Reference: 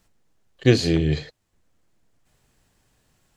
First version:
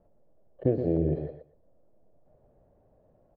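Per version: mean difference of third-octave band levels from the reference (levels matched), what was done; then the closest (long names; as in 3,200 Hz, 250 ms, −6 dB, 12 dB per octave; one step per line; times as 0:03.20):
11.0 dB: downward compressor 8 to 1, threshold −25 dBFS, peak gain reduction 15 dB
low-pass with resonance 600 Hz, resonance Q 4.9
repeating echo 121 ms, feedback 16%, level −8 dB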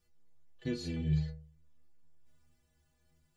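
5.0 dB: low-shelf EQ 160 Hz +8 dB
downward compressor 6 to 1, threshold −19 dBFS, peak gain reduction 11.5 dB
stiff-string resonator 73 Hz, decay 0.69 s, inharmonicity 0.03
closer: second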